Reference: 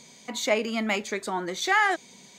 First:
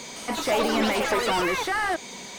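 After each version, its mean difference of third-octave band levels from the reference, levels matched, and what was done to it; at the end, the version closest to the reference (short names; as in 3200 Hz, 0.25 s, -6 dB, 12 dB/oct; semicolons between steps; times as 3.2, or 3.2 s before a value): 10.0 dB: high shelf 5000 Hz +10.5 dB; vocal rider within 5 dB 0.5 s; overdrive pedal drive 26 dB, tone 1000 Hz, clips at -17 dBFS; echoes that change speed 0.162 s, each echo +5 st, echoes 3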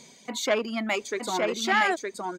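5.0 dB: reverb removal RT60 1.6 s; bell 390 Hz +3 dB 1.6 oct; echo 0.916 s -3.5 dB; core saturation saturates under 1300 Hz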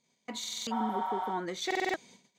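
7.5 dB: spectral repair 0.74–1.28, 580–11000 Hz after; gate -48 dBFS, range -21 dB; high shelf 6100 Hz -6.5 dB; stuck buffer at 0.39/1.66, samples 2048, times 5; gain -4.5 dB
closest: second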